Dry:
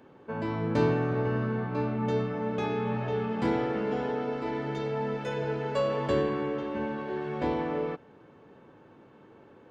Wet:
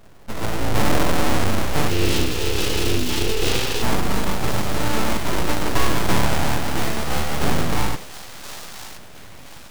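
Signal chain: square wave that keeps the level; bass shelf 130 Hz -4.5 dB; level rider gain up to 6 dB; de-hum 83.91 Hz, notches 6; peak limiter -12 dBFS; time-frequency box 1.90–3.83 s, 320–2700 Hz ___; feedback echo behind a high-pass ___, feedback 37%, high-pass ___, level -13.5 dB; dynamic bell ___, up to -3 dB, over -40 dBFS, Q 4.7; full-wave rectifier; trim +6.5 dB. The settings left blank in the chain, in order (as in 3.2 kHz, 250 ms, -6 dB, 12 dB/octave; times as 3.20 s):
-26 dB, 1022 ms, 1.5 kHz, 290 Hz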